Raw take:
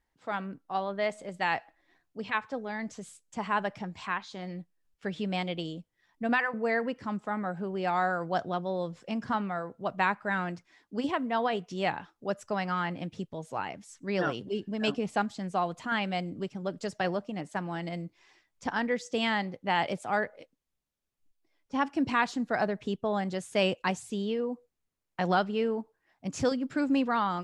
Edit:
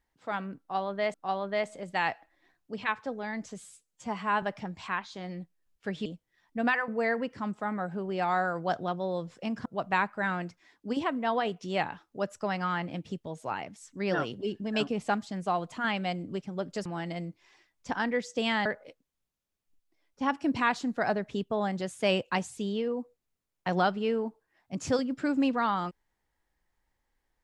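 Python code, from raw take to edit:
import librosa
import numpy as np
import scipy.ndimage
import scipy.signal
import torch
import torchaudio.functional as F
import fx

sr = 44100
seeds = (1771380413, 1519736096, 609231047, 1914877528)

y = fx.edit(x, sr, fx.repeat(start_s=0.6, length_s=0.54, count=2),
    fx.stretch_span(start_s=3.06, length_s=0.55, factor=1.5),
    fx.cut(start_s=5.24, length_s=0.47),
    fx.cut(start_s=9.31, length_s=0.42),
    fx.cut(start_s=16.93, length_s=0.69),
    fx.cut(start_s=19.42, length_s=0.76), tone=tone)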